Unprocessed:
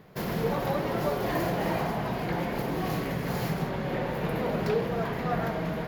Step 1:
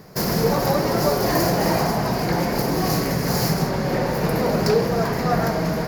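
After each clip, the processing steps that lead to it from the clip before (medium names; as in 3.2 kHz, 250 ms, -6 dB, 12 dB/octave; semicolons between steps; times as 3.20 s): resonant high shelf 4.1 kHz +6.5 dB, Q 3; trim +8.5 dB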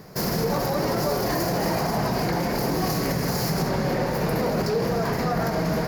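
peak limiter -15.5 dBFS, peak gain reduction 9 dB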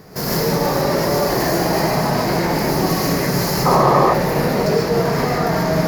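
gated-style reverb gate 170 ms rising, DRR -4 dB; painted sound noise, 3.65–4.14 s, 330–1300 Hz -16 dBFS; trim +1.5 dB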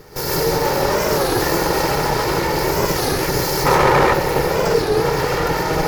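comb filter that takes the minimum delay 2.2 ms; warped record 33 1/3 rpm, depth 160 cents; trim +1.5 dB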